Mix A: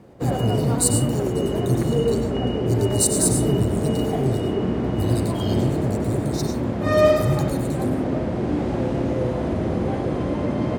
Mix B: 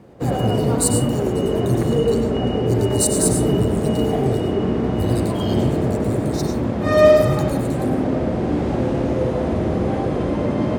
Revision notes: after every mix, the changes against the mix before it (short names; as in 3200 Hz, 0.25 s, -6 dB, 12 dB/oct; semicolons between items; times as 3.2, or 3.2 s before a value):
background: send +10.0 dB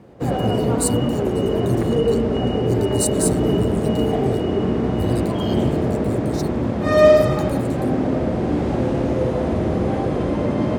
speech: send off